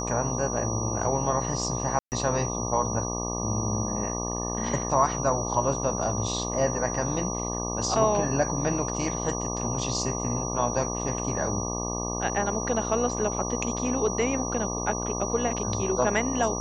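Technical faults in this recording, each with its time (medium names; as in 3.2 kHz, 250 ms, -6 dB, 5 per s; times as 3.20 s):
buzz 60 Hz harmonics 20 -32 dBFS
whine 5.8 kHz -33 dBFS
1.99–2.12 s: dropout 129 ms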